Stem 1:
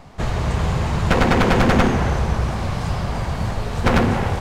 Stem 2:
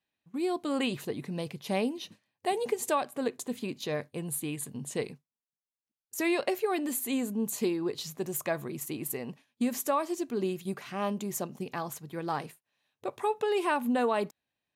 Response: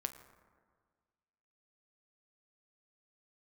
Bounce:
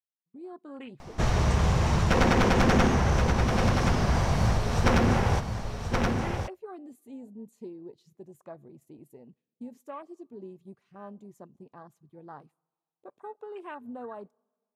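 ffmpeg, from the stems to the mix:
-filter_complex "[0:a]equalizer=f=5.7k:t=o:w=0.21:g=8.5,adelay=1000,volume=-5dB,asplit=3[a][b][c];[b]volume=-5.5dB[d];[c]volume=-5dB[e];[1:a]lowpass=11k,afwtdn=0.02,volume=-13dB,asplit=2[f][g];[g]volume=-23dB[h];[2:a]atrim=start_sample=2205[i];[d][h]amix=inputs=2:normalize=0[j];[j][i]afir=irnorm=-1:irlink=0[k];[e]aecho=0:1:1075:1[l];[a][f][k][l]amix=inputs=4:normalize=0,alimiter=limit=-14dB:level=0:latency=1:release=222"

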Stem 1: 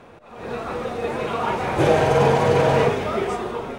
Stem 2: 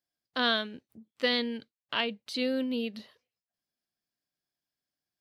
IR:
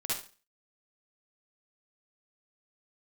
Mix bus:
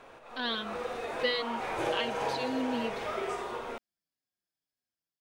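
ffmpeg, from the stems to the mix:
-filter_complex "[0:a]equalizer=f=130:t=o:w=2.5:g=-14.5,acompressor=threshold=-41dB:ratio=2,flanger=delay=7.3:depth=1.7:regen=75:speed=0.89:shape=sinusoidal,volume=-1dB,asplit=2[a][b];[b]volume=-7dB[c];[1:a]asplit=2[d][e];[e]adelay=4.9,afreqshift=-1.9[f];[d][f]amix=inputs=2:normalize=1,volume=-5dB,asplit=2[g][h];[h]apad=whole_len=166699[i];[a][i]sidechaincompress=threshold=-47dB:ratio=8:attack=16:release=139[j];[2:a]atrim=start_sample=2205[k];[c][k]afir=irnorm=-1:irlink=0[l];[j][g][l]amix=inputs=3:normalize=0,dynaudnorm=f=190:g=5:m=4dB"

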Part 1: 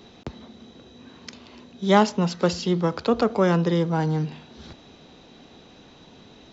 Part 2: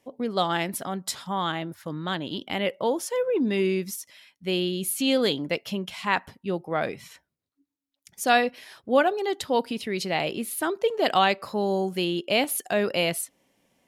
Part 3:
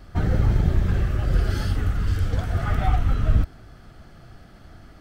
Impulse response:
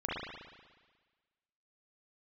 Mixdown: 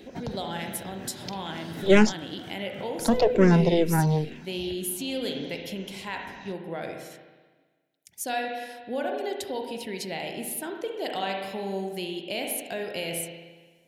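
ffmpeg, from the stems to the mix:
-filter_complex "[0:a]aeval=exprs='0.531*(cos(1*acos(clip(val(0)/0.531,-1,1)))-cos(1*PI/2))+0.119*(cos(4*acos(clip(val(0)/0.531,-1,1)))-cos(4*PI/2))':c=same,asplit=2[a][b];[b]afreqshift=-2.1[c];[a][c]amix=inputs=2:normalize=1,volume=2.5dB,asplit=3[d][e][f];[d]atrim=end=2.13,asetpts=PTS-STARTPTS,afade=t=out:st=2.126:d=0.004:c=hsin[g];[e]atrim=start=2.13:end=2.99,asetpts=PTS-STARTPTS,volume=0[h];[f]atrim=start=2.99,asetpts=PTS-STARTPTS,afade=t=in:d=0.004:c=hsin[i];[g][h][i]concat=n=3:v=0:a=1[j];[1:a]highshelf=f=6.2k:g=8,volume=-7.5dB,asplit=3[k][l][m];[l]volume=-9dB[n];[2:a]highpass=f=160:w=0.5412,highpass=f=160:w=1.3066,volume=-4dB,asplit=2[o][p];[p]volume=-22dB[q];[m]apad=whole_len=220550[r];[o][r]sidechaincompress=threshold=-46dB:ratio=8:attack=16:release=140[s];[k][s]amix=inputs=2:normalize=0,acompressor=threshold=-33dB:ratio=6,volume=0dB[t];[3:a]atrim=start_sample=2205[u];[n][q]amix=inputs=2:normalize=0[v];[v][u]afir=irnorm=-1:irlink=0[w];[j][t][w]amix=inputs=3:normalize=0,equalizer=f=1.2k:t=o:w=0.24:g=-15"

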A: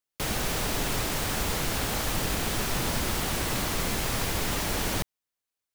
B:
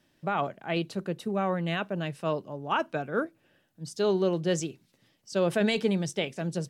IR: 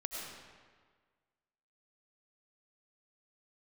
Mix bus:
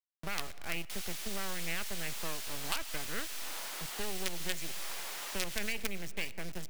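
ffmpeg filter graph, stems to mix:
-filter_complex "[0:a]highpass=720,adelay=700,volume=-9.5dB[a];[1:a]highshelf=f=2.8k:t=q:w=3:g=-7,acrusher=bits=4:dc=4:mix=0:aa=0.000001,adynamicequalizer=threshold=0.00501:dfrequency=3000:dqfactor=0.7:tfrequency=3000:tqfactor=0.7:attack=5:release=100:ratio=0.375:range=2:mode=cutabove:tftype=highshelf,volume=1.5dB,asplit=2[b][c];[c]volume=-20.5dB[d];[2:a]atrim=start_sample=2205[e];[d][e]afir=irnorm=-1:irlink=0[f];[a][b][f]amix=inputs=3:normalize=0,acrossover=split=88|2100|6100[g][h][i][j];[g]acompressor=threshold=-35dB:ratio=4[k];[h]acompressor=threshold=-44dB:ratio=4[l];[i]acompressor=threshold=-35dB:ratio=4[m];[j]acompressor=threshold=-38dB:ratio=4[n];[k][l][m][n]amix=inputs=4:normalize=0"

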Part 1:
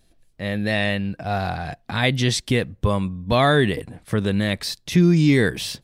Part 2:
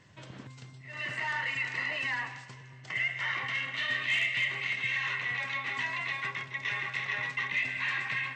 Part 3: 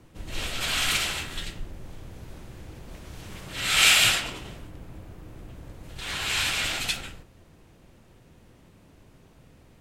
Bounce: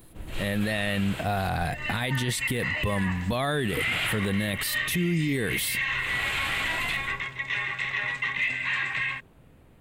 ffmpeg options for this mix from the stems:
-filter_complex "[0:a]aemphasis=mode=production:type=75kf,volume=2dB,asplit=2[a][b];[1:a]crystalizer=i=3:c=0,bandreject=f=4.4k:w=27,adelay=850,volume=2.5dB[c];[2:a]acrossover=split=3700[d][e];[e]acompressor=threshold=-33dB:ratio=4:attack=1:release=60[f];[d][f]amix=inputs=2:normalize=0,volume=-0.5dB[g];[b]apad=whole_len=432487[h];[g][h]sidechaincompress=threshold=-22dB:ratio=8:attack=16:release=602[i];[a][c]amix=inputs=2:normalize=0,alimiter=limit=-14.5dB:level=0:latency=1:release=46,volume=0dB[j];[i][j]amix=inputs=2:normalize=0,equalizer=f=5.6k:t=o:w=0.84:g=-13,alimiter=limit=-18.5dB:level=0:latency=1:release=12"

